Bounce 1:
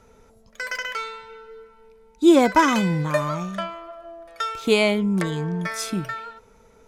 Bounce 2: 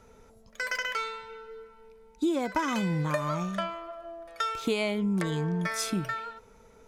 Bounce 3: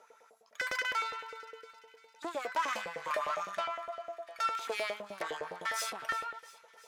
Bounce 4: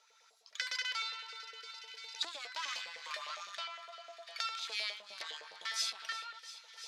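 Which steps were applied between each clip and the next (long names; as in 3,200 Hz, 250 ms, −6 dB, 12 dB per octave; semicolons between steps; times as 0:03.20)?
downward compressor 16 to 1, threshold −22 dBFS, peak gain reduction 13.5 dB; level −2 dB
tube saturation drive 30 dB, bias 0.6; auto-filter high-pass saw up 9.8 Hz 480–2,000 Hz; delay with a high-pass on its return 343 ms, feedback 61%, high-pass 2,500 Hz, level −16 dB; level −1 dB
camcorder AGC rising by 15 dB per second; resonant band-pass 4,300 Hz, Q 2.4; level +8 dB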